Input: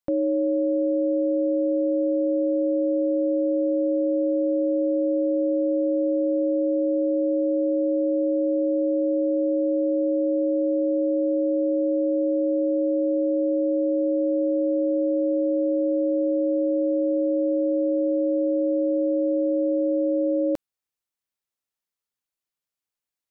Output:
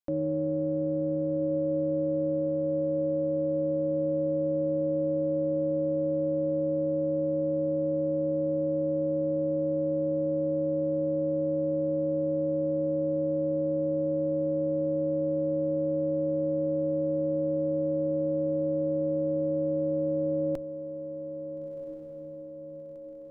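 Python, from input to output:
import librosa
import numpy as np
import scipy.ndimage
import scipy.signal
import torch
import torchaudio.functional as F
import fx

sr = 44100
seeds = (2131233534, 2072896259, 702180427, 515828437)

y = fx.octave_divider(x, sr, octaves=1, level_db=-3.0)
y = fx.echo_diffused(y, sr, ms=1384, feedback_pct=57, wet_db=-10.5)
y = y * 10.0 ** (-6.5 / 20.0)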